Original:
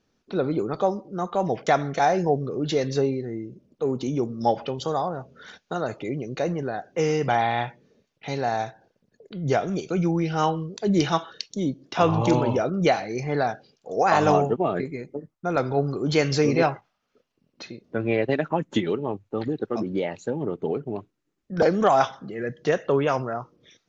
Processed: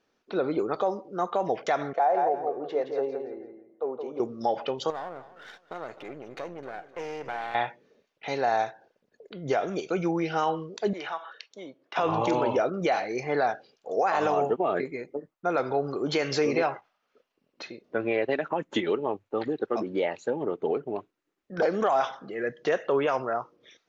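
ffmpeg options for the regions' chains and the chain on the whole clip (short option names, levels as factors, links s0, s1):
-filter_complex "[0:a]asettb=1/sr,asplit=3[s0][s1][s2];[s0]atrim=end=1.934[s3];[s1]atrim=start=1.93:end=4.2,asetpts=PTS-STARTPTS,afade=t=in:d=0.004:c=qsin,afade=t=out:st=2.266:d=0.004:c=qsin,bandpass=f=700:t=q:w=1.5,aecho=1:1:169|338|507:0.473|0.128|0.0345,atrim=end_sample=100107[s4];[s2]atrim=start=4.196[s5];[s3][s4]acrossfade=d=0.004:c1=hsin:c2=qsin[s6];[s6][s5]acrossfade=d=0.004:c1=qsin:c2=hsin,asettb=1/sr,asplit=3[s7][s8][s9];[s7]atrim=end=4.904[s10];[s8]atrim=start=4.9:end=7.55,asetpts=PTS-STARTPTS,afade=t=in:d=0.004:c=qsin,afade=t=out:st=2.646:d=0.004:c=qsin,aeval=exprs='if(lt(val(0),0),0.251*val(0),val(0))':c=same,acompressor=threshold=0.0141:ratio=2:attack=3.2:release=140:knee=1:detection=peak,aecho=1:1:259|518|777:0.15|0.0449|0.0135,atrim=end_sample=116865[s11];[s9]atrim=start=7.546[s12];[s10][s11]acrossfade=d=0.004:c1=hsin:c2=qsin[s13];[s13][s12]acrossfade=d=0.004:c1=qsin:c2=hsin,asettb=1/sr,asplit=3[s14][s15][s16];[s14]atrim=end=10.934[s17];[s15]atrim=start=10.93:end=11.96,asetpts=PTS-STARTPTS,afade=t=in:d=0.004:c=qsin,afade=t=out:st=1.026:d=0.004:c=qsin,acrossover=split=560 2800:gain=0.141 1 0.2[s18][s19][s20];[s18][s19][s20]amix=inputs=3:normalize=0,acompressor=threshold=0.02:ratio=2.5:attack=3.2:release=140:knee=1:detection=peak[s21];[s16]atrim=start=11.956[s22];[s17][s21]acrossfade=d=0.004:c1=hsin:c2=qsin[s23];[s23][s22]acrossfade=d=0.004:c1=qsin:c2=hsin,bass=f=250:g=-15,treble=f=4000:g=-7,alimiter=limit=0.133:level=0:latency=1:release=71,volume=1.26"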